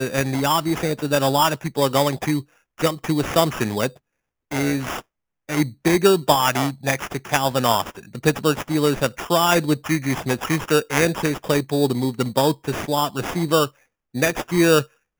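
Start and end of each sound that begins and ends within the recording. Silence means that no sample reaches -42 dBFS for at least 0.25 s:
2.78–3.97
4.51–5.01
5.49–13.69
14.14–14.86

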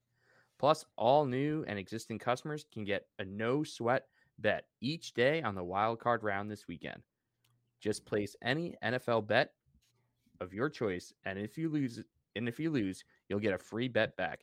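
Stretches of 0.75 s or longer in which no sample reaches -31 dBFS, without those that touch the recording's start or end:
6.93–7.86
9.44–10.42

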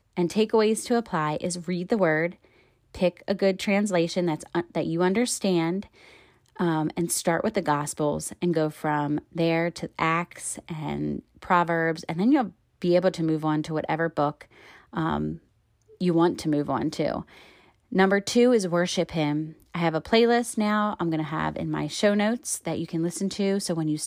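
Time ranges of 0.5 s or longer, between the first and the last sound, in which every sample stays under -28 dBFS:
2.27–2.97
5.8–6.6
14.31–14.96
15.32–16.01
17.21–17.93

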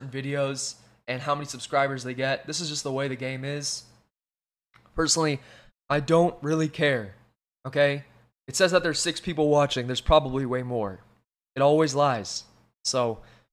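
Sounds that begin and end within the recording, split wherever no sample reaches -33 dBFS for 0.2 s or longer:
1.08–3.79
4.97–5.37
5.9–7.07
7.65–7.99
8.49–10.94
11.56–12.4
12.85–13.14

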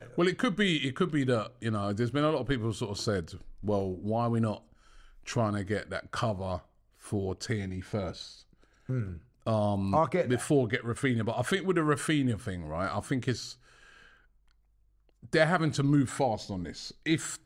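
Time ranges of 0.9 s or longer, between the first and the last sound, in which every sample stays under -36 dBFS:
13.52–15.25

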